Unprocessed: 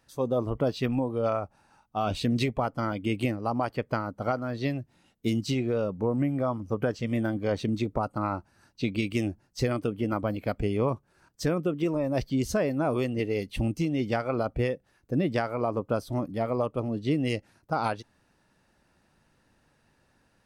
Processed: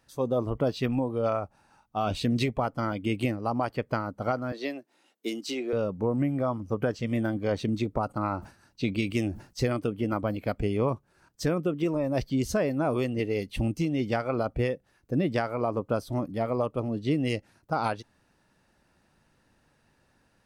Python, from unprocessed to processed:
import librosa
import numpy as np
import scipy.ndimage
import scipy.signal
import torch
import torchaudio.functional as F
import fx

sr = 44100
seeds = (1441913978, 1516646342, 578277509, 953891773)

y = fx.highpass(x, sr, hz=300.0, slope=24, at=(4.52, 5.73))
y = fx.sustainer(y, sr, db_per_s=150.0, at=(8.07, 9.71))